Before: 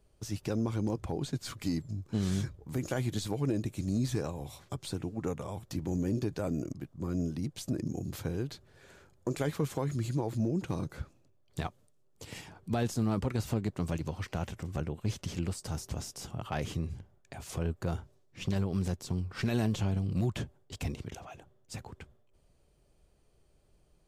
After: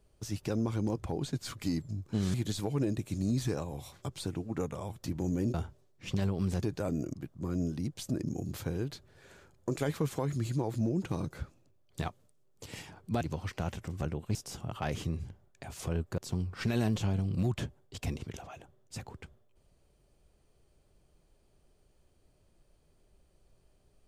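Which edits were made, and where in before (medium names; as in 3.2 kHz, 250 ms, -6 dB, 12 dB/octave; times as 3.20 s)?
2.34–3.01 s: delete
12.80–13.96 s: delete
15.10–16.05 s: delete
17.88–18.96 s: move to 6.21 s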